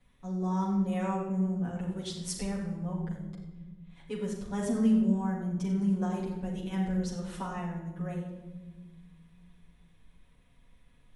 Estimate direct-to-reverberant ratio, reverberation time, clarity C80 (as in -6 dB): -7.0 dB, 1.3 s, 5.5 dB